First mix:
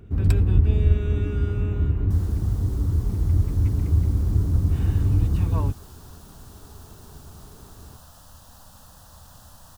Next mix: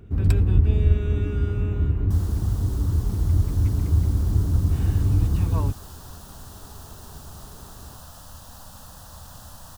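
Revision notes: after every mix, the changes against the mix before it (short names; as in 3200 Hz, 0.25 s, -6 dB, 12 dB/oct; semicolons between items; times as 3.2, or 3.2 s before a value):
second sound +5.0 dB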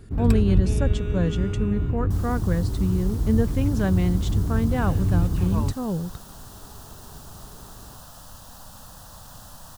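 speech: unmuted; master: add bell 78 Hz -9 dB 0.27 oct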